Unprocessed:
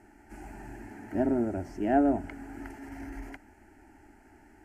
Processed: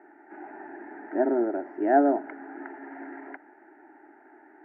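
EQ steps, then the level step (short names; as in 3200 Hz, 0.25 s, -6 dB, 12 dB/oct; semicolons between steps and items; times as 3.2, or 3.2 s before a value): Chebyshev band-pass 320–1800 Hz, order 3; +6.0 dB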